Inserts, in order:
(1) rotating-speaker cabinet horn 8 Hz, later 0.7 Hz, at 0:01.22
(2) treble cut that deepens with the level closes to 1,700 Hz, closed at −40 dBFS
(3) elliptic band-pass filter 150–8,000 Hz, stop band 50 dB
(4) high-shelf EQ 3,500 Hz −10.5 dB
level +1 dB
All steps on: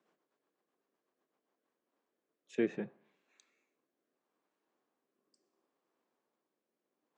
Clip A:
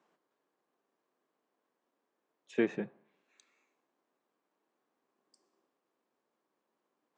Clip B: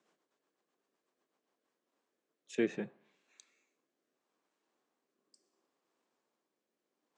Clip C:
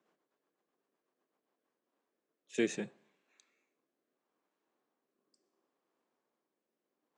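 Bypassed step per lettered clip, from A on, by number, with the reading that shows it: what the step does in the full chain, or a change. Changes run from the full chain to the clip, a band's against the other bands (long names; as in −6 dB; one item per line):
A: 1, 1 kHz band +3.5 dB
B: 4, 4 kHz band +5.0 dB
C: 2, 4 kHz band +10.5 dB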